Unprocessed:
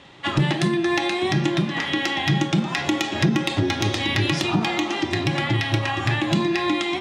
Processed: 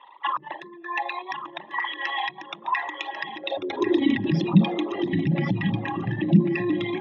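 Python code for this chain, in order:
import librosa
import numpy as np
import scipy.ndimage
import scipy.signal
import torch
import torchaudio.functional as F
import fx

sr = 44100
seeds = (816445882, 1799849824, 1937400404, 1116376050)

p1 = fx.envelope_sharpen(x, sr, power=3.0)
p2 = fx.filter_sweep_highpass(p1, sr, from_hz=980.0, to_hz=180.0, start_s=3.24, end_s=4.34, q=5.9)
p3 = p2 + fx.echo_feedback(p2, sr, ms=1093, feedback_pct=24, wet_db=-9.5, dry=0)
y = F.gain(torch.from_numpy(p3), -5.5).numpy()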